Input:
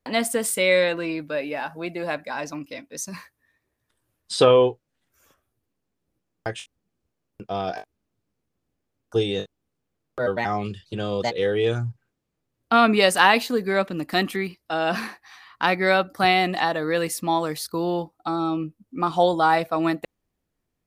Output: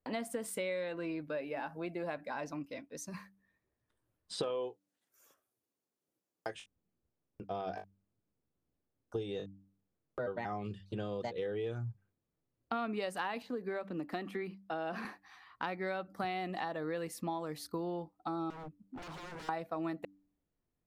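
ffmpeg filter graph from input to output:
-filter_complex "[0:a]asettb=1/sr,asplit=3[a][b][c];[a]atrim=end=4.434[d];[b]atrim=start=4.43:end=6.55,asetpts=PTS-STARTPTS,afade=t=in:d=0.004:c=qsin,afade=t=out:st=2.116:d=0.004:c=qsin,highpass=120,bass=f=250:g=-10,treble=f=4k:g=12[e];[c]atrim=start=6.546[f];[d][e]acrossfade=d=0.004:c1=hsin:c2=qsin[g];[g][f]acrossfade=d=0.004:c1=qsin:c2=hsin,asettb=1/sr,asplit=3[h][i][j];[h]atrim=end=13.424[k];[i]atrim=start=13.42:end=15.05,asetpts=PTS-STARTPTS,afade=t=in:d=0.004:c=qsin,afade=t=out:st=1.626:d=0.004:c=qsin,highshelf=f=4k:g=-7.5,acrossover=split=190|5600[l][m][n];[l]acompressor=threshold=-46dB:ratio=4[o];[m]acompressor=threshold=-22dB:ratio=4[p];[n]acompressor=threshold=-47dB:ratio=4[q];[o][p][q]amix=inputs=3:normalize=0[r];[j]atrim=start=15.046[s];[k][r]acrossfade=d=0.004:c1=hsin:c2=qsin[t];[t][s]acrossfade=d=0.004:c1=qsin:c2=hsin,asettb=1/sr,asplit=3[u][v][w];[u]atrim=end=18.504[x];[v]atrim=start=18.5:end=19.49,asetpts=PTS-STARTPTS,afade=t=in:d=0.004:c=qsin,afade=t=out:st=0.986:d=0.004:c=qsin,acompressor=threshold=-24dB:ratio=5:attack=3.2:release=140:knee=1:detection=peak,aeval=exprs='0.0224*(abs(mod(val(0)/0.0224+3,4)-2)-1)':c=same[y];[w]atrim=start=19.486[z];[x][y]acrossfade=d=0.004:c1=hsin:c2=qsin[aa];[aa][z]acrossfade=d=0.004:c1=qsin:c2=hsin,highshelf=f=2.1k:g=-9,bandreject=f=97.41:t=h:w=4,bandreject=f=194.82:t=h:w=4,bandreject=f=292.23:t=h:w=4,acompressor=threshold=-28dB:ratio=6,volume=-6.5dB"

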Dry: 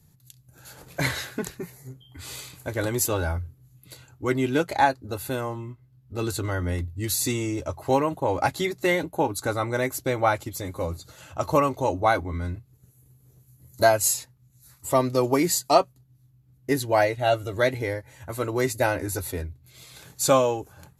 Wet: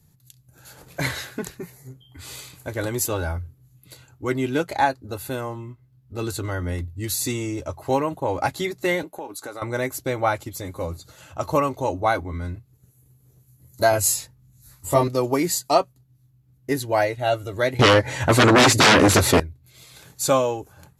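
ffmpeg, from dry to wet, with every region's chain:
-filter_complex "[0:a]asettb=1/sr,asplit=3[a][b][c];[a]atrim=end=9.034[d];[b]atrim=start=9.03:end=9.62,asetpts=PTS-STARTPTS,afade=t=in:d=0.004:c=qsin,afade=t=out:st=0.586:d=0.004:c=qsin,highpass=290,acompressor=threshold=-31dB:ratio=4:attack=3.2:release=140:knee=1:detection=peak[e];[c]atrim=start=9.616[f];[d][e]acrossfade=d=0.004:c1=hsin:c2=qsin[g];[g][f]acrossfade=d=0.004:c1=qsin:c2=hsin,asettb=1/sr,asplit=3[h][i][j];[h]atrim=end=13.914[k];[i]atrim=start=13.91:end=15.08,asetpts=PTS-STARTPTS,afade=t=in:d=0.004:c=qsin,afade=t=out:st=1.166:d=0.004:c=qsin,lowshelf=f=170:g=7.5,asplit=2[l][m];[m]adelay=21,volume=-2dB[n];[l][n]amix=inputs=2:normalize=0,atrim=end_sample=51597[o];[j]atrim=start=15.076[p];[k][o]acrossfade=d=0.004:c1=hsin:c2=qsin[q];[q][p]acrossfade=d=0.004:c1=qsin:c2=hsin,asettb=1/sr,asplit=3[r][s][t];[r]atrim=end=17.794[u];[s]atrim=start=17.79:end=19.4,asetpts=PTS-STARTPTS,afade=t=in:d=0.004:c=qsin,afade=t=out:st=1.606:d=0.004:c=qsin,aeval=exprs='0.335*sin(PI/2*7.94*val(0)/0.335)':c=same,highpass=120,lowpass=6.9k[v];[t]atrim=start=19.396[w];[u][v]acrossfade=d=0.004:c1=hsin:c2=qsin[x];[x][w]acrossfade=d=0.004:c1=qsin:c2=hsin"

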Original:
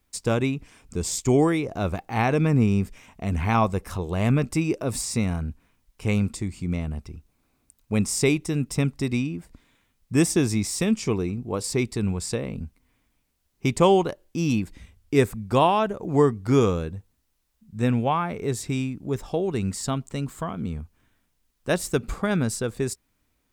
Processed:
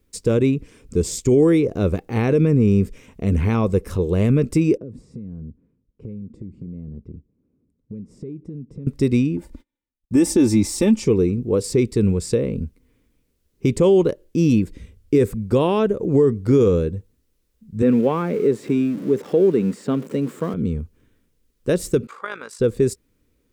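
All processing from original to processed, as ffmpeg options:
-filter_complex "[0:a]asettb=1/sr,asplit=3[a][b][c];[a]atrim=end=4.774[d];[b]atrim=start=4.77:end=8.87,asetpts=PTS-STARTPTS,afade=t=in:d=0.004:c=qsin,afade=t=out:st=4.096:d=0.004:c=qsin,bandpass=f=180:t=q:w=1,acompressor=threshold=-37dB:ratio=12:attack=3.2:release=140:knee=1:detection=peak[e];[c]atrim=start=8.866[f];[d][e]acrossfade=d=0.004:c1=hsin:c2=qsin[g];[g][f]acrossfade=d=0.004:c1=qsin:c2=hsin,asettb=1/sr,asplit=3[h][i][j];[h]atrim=end=9.374[k];[i]atrim=start=9.37:end=11.05,asetpts=PTS-STARTPTS,afade=t=in:d=0.004:c=qsin,afade=t=out:st=1.676:d=0.004:c=qsin,agate=range=-31dB:threshold=-58dB:ratio=16:release=100:detection=peak,equalizer=f=860:t=o:w=0.34:g=11.5,aecho=1:1:3.4:0.71,atrim=end_sample=74088[l];[j]atrim=start=11.046[m];[k][l]acrossfade=d=0.004:c1=hsin:c2=qsin[n];[n][m]acrossfade=d=0.004:c1=qsin:c2=hsin,asettb=1/sr,asplit=3[o][p][q];[o]atrim=end=17.824[r];[p]atrim=start=17.82:end=20.54,asetpts=PTS-STARTPTS,afade=t=in:d=0.004:c=qsin,afade=t=out:st=2.716:d=0.004:c=qsin,aeval=exprs='val(0)+0.5*0.0188*sgn(val(0))':c=same,acrossover=split=2600[s][t];[t]acompressor=threshold=-47dB:ratio=4:attack=1:release=60[u];[s][u]amix=inputs=2:normalize=0,highpass=f=170:w=0.5412,highpass=f=170:w=1.3066[v];[q]atrim=start=20.536[w];[r][v]acrossfade=d=0.004:c1=hsin:c2=qsin[x];[x][w]acrossfade=d=0.004:c1=qsin:c2=hsin,asettb=1/sr,asplit=3[y][z][aa];[y]atrim=end=22.074[ab];[z]atrim=start=22.07:end=22.6,asetpts=PTS-STARTPTS,afade=t=in:d=0.004:c=qsin,afade=t=out:st=0.526:d=0.004:c=qsin,highpass=f=1.1k:t=q:w=2.1,highshelf=f=6.1k:g=-12,tremolo=f=52:d=0.621[ac];[aa]atrim=start=22.596[ad];[ab][ac]acrossfade=d=0.004:c1=hsin:c2=qsin[ae];[ae][ad]acrossfade=d=0.004:c1=qsin:c2=hsin,lowshelf=f=590:t=q:w=3:g=6.5,alimiter=level_in=7dB:limit=-1dB:release=50:level=0:latency=1,volume=-7dB"

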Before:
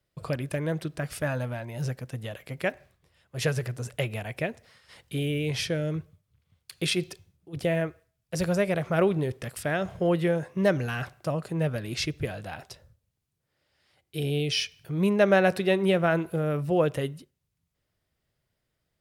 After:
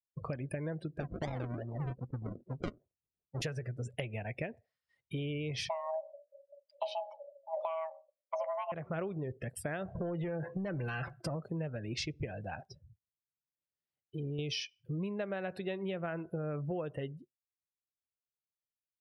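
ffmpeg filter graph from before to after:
-filter_complex "[0:a]asettb=1/sr,asplit=3[a][b][c];[a]atrim=end=1.004[d];[b]atrim=start=1:end=3.42,asetpts=PTS-STARTPTS,afade=t=in:d=0.004:c=qsin,afade=t=out:st=2.416:d=0.004:c=qsin,highshelf=f=11k:g=9,acrusher=samples=41:mix=1:aa=0.000001:lfo=1:lforange=24.6:lforate=2.5,adynamicsmooth=sensitivity=7:basefreq=850[e];[c]atrim=start=3.416[f];[d][e]acrossfade=d=0.004:c1=hsin:c2=qsin[g];[g][f]acrossfade=d=0.004:c1=qsin:c2=hsin,asettb=1/sr,asplit=3[h][i][j];[h]atrim=end=5.694[k];[i]atrim=start=5.69:end=8.72,asetpts=PTS-STARTPTS,afade=t=in:d=0.004:c=qsin,afade=t=out:st=3.026:d=0.004:c=qsin,aemphasis=mode=reproduction:type=riaa,bandreject=f=50:t=h:w=6,bandreject=f=100:t=h:w=6,bandreject=f=150:t=h:w=6,bandreject=f=200:t=h:w=6,bandreject=f=250:t=h:w=6,bandreject=f=300:t=h:w=6,bandreject=f=350:t=h:w=6,afreqshift=480[l];[j]atrim=start=8.716[m];[k][l]acrossfade=d=0.004:c1=hsin:c2=qsin[n];[n][m]acrossfade=d=0.004:c1=qsin:c2=hsin,asettb=1/sr,asplit=3[o][p][q];[o]atrim=end=9.954[r];[p]atrim=start=9.95:end=11.36,asetpts=PTS-STARTPTS,afade=t=in:d=0.004:c=qsin,afade=t=out:st=1.406:d=0.004:c=qsin,aecho=1:1:5.9:0.36,atrim=end_sample=62181,acompressor=threshold=-30dB:ratio=12:attack=3.2:release=140:knee=1:detection=peak,aeval=exprs='0.0708*sin(PI/2*1.58*val(0)/0.0708)':c=same[s];[q]atrim=start=11.356[t];[r][s]acrossfade=d=0.004:c1=hsin:c2=qsin[u];[u][t]acrossfade=d=0.004:c1=qsin:c2=hsin,asettb=1/sr,asplit=3[v][w][x];[v]atrim=end=12.664[y];[w]atrim=start=12.66:end=14.39,asetpts=PTS-STARTPTS,afade=t=in:d=0.004:c=qsin,afade=t=out:st=1.726:d=0.004:c=qsin,equalizer=f=210:t=o:w=1.8:g=9,acompressor=threshold=-40dB:ratio=2:attack=3.2:release=140:knee=1:detection=peak[z];[x]atrim=start=14.386[aa];[y][z]acrossfade=d=0.004:c1=hsin:c2=qsin[ab];[ab][aa]acrossfade=d=0.004:c1=qsin:c2=hsin,afftdn=nr=32:nf=-40,acompressor=threshold=-32dB:ratio=12,volume=-2dB"

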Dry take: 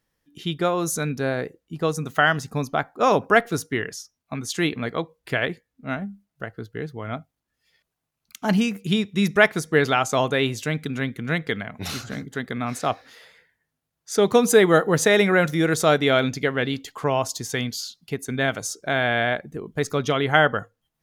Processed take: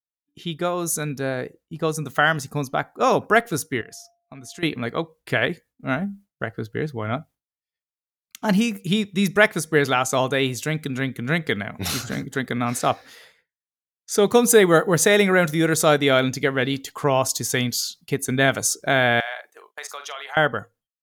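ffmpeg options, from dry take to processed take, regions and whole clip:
-filter_complex "[0:a]asettb=1/sr,asplit=3[a][b][c];[a]atrim=end=3.814[d];[b]atrim=start=3.81:end=4.63,asetpts=PTS-STARTPTS,afade=t=in:d=0.004:c=qsin,afade=t=out:st=0.816:d=0.004:c=qsin,acompressor=threshold=-40dB:ratio=3:attack=3.2:release=140:knee=1:detection=peak,aeval=exprs='val(0)+0.00178*sin(2*PI*690*n/s)':c=same[e];[c]atrim=start=4.626[f];[d][e]acrossfade=d=0.004:c1=hsin:c2=qsin[g];[g][f]acrossfade=d=0.004:c1=qsin:c2=hsin,asettb=1/sr,asplit=3[h][i][j];[h]atrim=end=19.204[k];[i]atrim=start=19.2:end=20.37,asetpts=PTS-STARTPTS,afade=t=in:d=0.004:c=qsin,afade=t=out:st=1.166:d=0.004:c=qsin,highpass=f=700:w=0.5412,highpass=f=700:w=1.3066,asplit=2[l][m];[m]adelay=43,volume=-11dB[n];[l][n]amix=inputs=2:normalize=0,atrim=end_sample=51597,acompressor=threshold=-31dB:ratio=3:attack=3.2:release=140:knee=1:detection=peak[o];[j]atrim=start=20.366[p];[k][o]acrossfade=d=0.004:c1=hsin:c2=qsin[q];[q][p]acrossfade=d=0.004:c1=qsin:c2=hsin,agate=range=-33dB:threshold=-46dB:ratio=3:detection=peak,dynaudnorm=f=480:g=7:m=11.5dB,adynamicequalizer=threshold=0.0126:dfrequency=6600:dqfactor=0.7:tfrequency=6600:tqfactor=0.7:attack=5:release=100:ratio=0.375:range=3.5:mode=boostabove:tftype=highshelf,volume=-2dB"

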